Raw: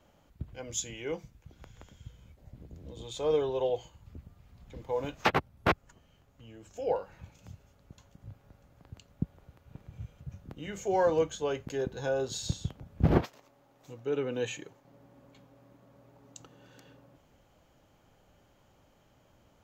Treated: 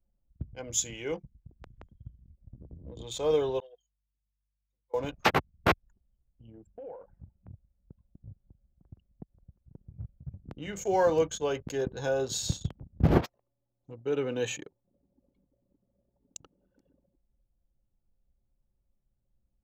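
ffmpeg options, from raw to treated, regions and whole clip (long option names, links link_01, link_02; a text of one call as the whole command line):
ffmpeg -i in.wav -filter_complex "[0:a]asettb=1/sr,asplit=3[link_01][link_02][link_03];[link_01]atrim=end=3.604[link_04];[link_02]atrim=start=3.6:end=4.94,asetpts=PTS-STARTPTS,afade=type=in:duration=0.004:curve=qsin,afade=type=out:start_time=1.336:duration=0.004:curve=qsin,aderivative,aeval=exprs='val(0)+0.000141*(sin(2*PI*50*n/s)+sin(2*PI*2*50*n/s)/2+sin(2*PI*3*50*n/s)/3+sin(2*PI*4*50*n/s)/4+sin(2*PI*5*50*n/s)/5)':channel_layout=same[link_05];[link_03]atrim=start=4.936[link_06];[link_04][link_05]acrossfade=duration=0.004:curve1=hsin:curve2=qsin[link_07];[link_07][link_06]acrossfade=duration=0.004:curve1=qsin:curve2=hsin,asettb=1/sr,asplit=3[link_08][link_09][link_10];[link_08]atrim=end=6.674[link_11];[link_09]atrim=start=6.67:end=9.9,asetpts=PTS-STARTPTS,afade=type=in:duration=0.004:curve=qsin,afade=type=out:start_time=3.226:duration=0.004:curve=qsin,lowpass=2200,acompressor=threshold=-41dB:ratio=8:attack=3.2:release=140:knee=1:detection=peak[link_12];[link_10]atrim=start=9.896[link_13];[link_11][link_12]acrossfade=duration=0.004:curve1=hsin:curve2=qsin[link_14];[link_14][link_13]acrossfade=duration=0.004:curve1=qsin:curve2=hsin,anlmdn=0.0251,highshelf=frequency=7000:gain=8.5,volume=1.5dB" out.wav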